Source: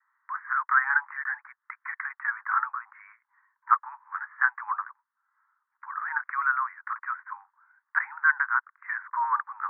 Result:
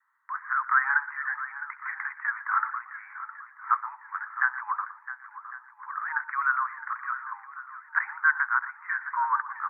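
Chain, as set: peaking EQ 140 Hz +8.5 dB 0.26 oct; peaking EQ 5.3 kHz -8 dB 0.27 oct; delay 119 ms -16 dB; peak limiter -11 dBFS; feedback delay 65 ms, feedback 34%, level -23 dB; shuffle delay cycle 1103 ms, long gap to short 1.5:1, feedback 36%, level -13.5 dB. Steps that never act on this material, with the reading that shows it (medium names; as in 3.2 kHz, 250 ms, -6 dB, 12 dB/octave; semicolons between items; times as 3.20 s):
peaking EQ 140 Hz: input has nothing below 720 Hz; peaking EQ 5.3 kHz: input has nothing above 2.2 kHz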